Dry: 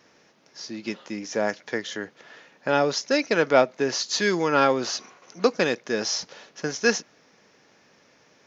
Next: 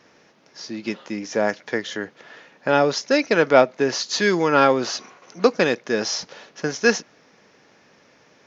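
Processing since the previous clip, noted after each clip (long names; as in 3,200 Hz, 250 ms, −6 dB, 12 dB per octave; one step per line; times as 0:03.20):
high-shelf EQ 6,200 Hz −7 dB
level +4 dB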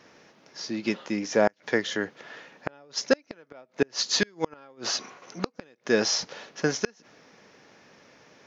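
gate with flip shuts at −9 dBFS, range −35 dB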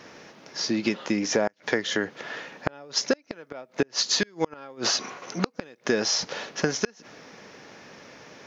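downward compressor 6 to 1, threshold −29 dBFS, peak gain reduction 13.5 dB
level +8 dB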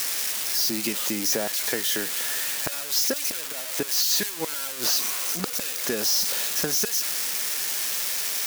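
spike at every zero crossing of −12 dBFS
level −5 dB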